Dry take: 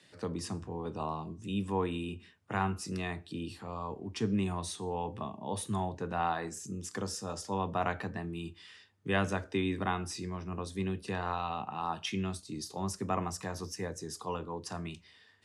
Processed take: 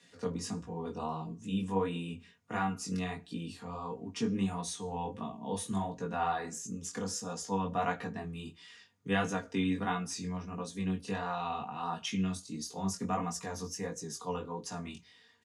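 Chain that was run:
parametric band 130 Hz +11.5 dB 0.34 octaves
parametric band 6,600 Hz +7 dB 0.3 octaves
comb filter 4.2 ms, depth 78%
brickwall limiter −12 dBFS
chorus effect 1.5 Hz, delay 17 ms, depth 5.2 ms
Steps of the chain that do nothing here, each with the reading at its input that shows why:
brickwall limiter −12 dBFS: peak of its input −14.5 dBFS

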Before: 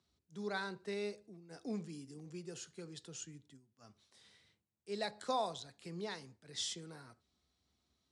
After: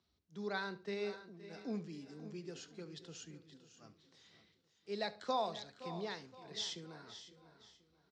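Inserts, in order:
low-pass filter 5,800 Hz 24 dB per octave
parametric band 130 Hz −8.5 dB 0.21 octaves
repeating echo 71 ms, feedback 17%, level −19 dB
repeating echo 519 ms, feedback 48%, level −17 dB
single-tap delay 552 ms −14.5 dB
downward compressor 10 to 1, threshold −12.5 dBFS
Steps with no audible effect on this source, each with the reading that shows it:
downward compressor, threshold −12.5 dBFS: peak of its input −23.5 dBFS

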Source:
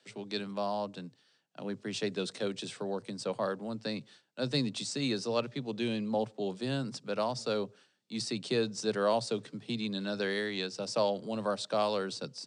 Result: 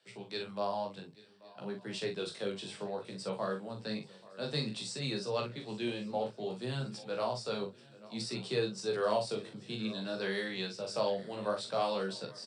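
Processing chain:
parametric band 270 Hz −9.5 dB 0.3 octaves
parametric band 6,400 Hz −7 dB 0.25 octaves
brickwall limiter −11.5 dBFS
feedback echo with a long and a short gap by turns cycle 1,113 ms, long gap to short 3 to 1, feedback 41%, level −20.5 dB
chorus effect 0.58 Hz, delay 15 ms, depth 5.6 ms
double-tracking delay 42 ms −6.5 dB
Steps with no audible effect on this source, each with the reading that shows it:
brickwall limiter −11.5 dBFS: peak of its input −16.5 dBFS

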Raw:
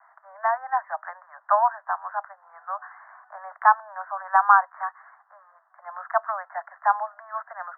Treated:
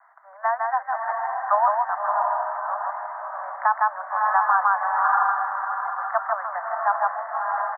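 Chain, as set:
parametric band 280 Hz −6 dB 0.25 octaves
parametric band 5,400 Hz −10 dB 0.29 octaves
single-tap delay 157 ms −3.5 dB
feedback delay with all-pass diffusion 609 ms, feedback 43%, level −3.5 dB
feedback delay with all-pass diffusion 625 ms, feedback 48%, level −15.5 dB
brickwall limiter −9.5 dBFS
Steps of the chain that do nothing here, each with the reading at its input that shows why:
parametric band 280 Hz: nothing at its input below 540 Hz
parametric band 5,400 Hz: nothing at its input above 1,900 Hz

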